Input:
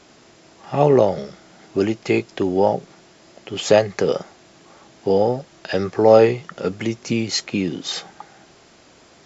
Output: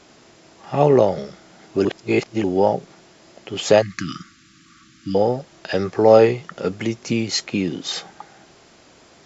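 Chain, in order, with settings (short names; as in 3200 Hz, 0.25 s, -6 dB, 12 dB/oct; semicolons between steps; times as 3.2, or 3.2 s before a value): 1.85–2.44 reverse; 3.82–5.15 brick-wall FIR band-stop 340–1100 Hz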